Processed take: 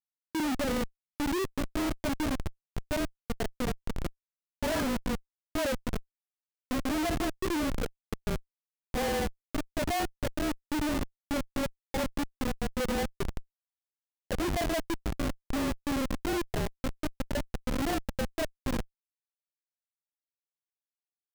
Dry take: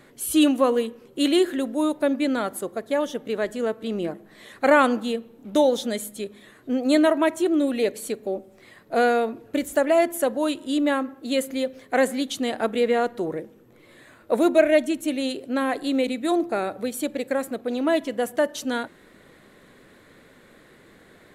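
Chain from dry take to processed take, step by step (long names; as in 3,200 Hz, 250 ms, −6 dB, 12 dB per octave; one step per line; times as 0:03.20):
partials spread apart or drawn together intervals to 108%
spectral peaks only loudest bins 8
comparator with hysteresis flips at −24 dBFS
level −2.5 dB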